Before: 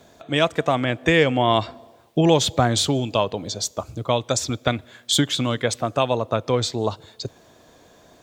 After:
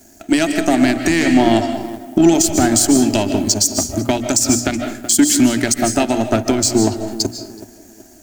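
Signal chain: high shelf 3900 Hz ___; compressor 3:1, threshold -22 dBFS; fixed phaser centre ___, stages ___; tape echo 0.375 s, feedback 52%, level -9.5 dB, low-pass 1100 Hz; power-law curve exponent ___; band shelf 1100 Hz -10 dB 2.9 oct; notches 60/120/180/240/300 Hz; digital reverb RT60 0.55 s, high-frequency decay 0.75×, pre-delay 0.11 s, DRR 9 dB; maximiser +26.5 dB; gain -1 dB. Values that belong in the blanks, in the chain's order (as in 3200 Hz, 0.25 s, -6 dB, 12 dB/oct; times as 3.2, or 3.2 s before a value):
+8 dB, 730 Hz, 8, 1.4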